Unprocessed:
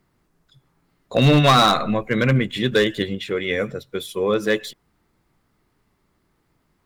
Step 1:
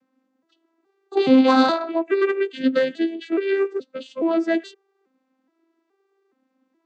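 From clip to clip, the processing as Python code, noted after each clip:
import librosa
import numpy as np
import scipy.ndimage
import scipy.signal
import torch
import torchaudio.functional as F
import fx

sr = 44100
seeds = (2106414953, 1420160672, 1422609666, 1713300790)

y = fx.vocoder_arp(x, sr, chord='major triad', root=60, every_ms=421)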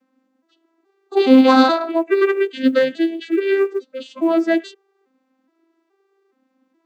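y = fx.hpss_only(x, sr, part='harmonic')
y = fx.quant_float(y, sr, bits=6)
y = F.gain(torch.from_numpy(y), 4.0).numpy()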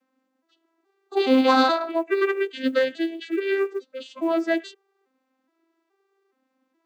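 y = fx.highpass(x, sr, hz=440.0, slope=6)
y = F.gain(torch.from_numpy(y), -3.0).numpy()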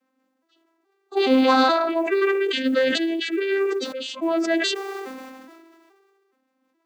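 y = fx.sustainer(x, sr, db_per_s=28.0)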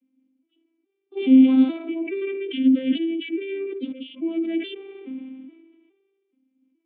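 y = fx.formant_cascade(x, sr, vowel='i')
y = F.gain(torch.from_numpy(y), 7.0).numpy()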